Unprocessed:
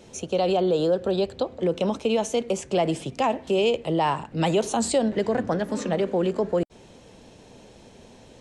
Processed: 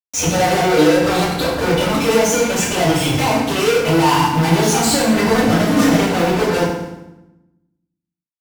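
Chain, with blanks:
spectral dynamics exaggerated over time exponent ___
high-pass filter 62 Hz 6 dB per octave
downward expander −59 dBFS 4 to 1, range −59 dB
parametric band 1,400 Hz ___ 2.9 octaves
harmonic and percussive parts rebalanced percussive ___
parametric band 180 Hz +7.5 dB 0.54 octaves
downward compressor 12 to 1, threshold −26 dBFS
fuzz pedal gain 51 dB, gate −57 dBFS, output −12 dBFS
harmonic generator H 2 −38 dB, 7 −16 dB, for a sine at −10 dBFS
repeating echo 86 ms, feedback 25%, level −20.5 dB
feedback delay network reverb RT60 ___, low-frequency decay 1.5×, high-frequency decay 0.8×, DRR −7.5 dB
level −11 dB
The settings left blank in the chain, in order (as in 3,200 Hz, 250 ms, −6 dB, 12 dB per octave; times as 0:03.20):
1.5, +13 dB, −4 dB, 0.92 s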